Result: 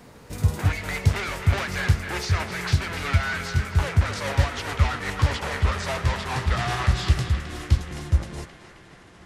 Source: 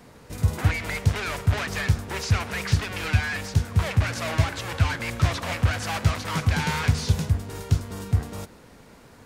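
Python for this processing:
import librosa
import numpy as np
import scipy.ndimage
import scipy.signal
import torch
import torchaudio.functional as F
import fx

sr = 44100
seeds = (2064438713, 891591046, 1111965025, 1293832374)

y = fx.pitch_glide(x, sr, semitones=-5.5, runs='starting unshifted')
y = fx.echo_banded(y, sr, ms=264, feedback_pct=72, hz=1900.0, wet_db=-7)
y = F.gain(torch.from_numpy(y), 1.5).numpy()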